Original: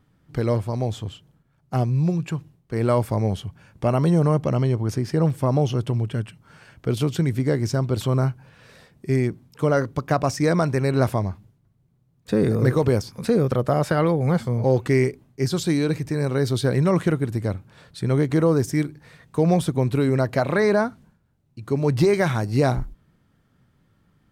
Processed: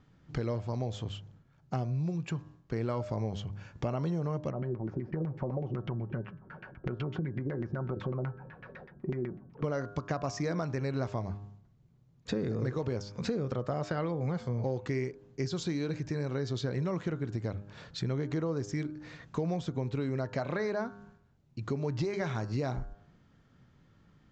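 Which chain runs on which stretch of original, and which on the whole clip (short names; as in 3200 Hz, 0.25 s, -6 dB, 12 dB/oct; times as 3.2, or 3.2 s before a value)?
4.5–9.64 compressor 4:1, threshold -26 dBFS + LFO low-pass saw down 8 Hz 250–2200 Hz + comb 5.4 ms, depth 34%
whole clip: steep low-pass 7400 Hz 96 dB/oct; de-hum 101.2 Hz, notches 17; compressor 4:1, threshold -32 dBFS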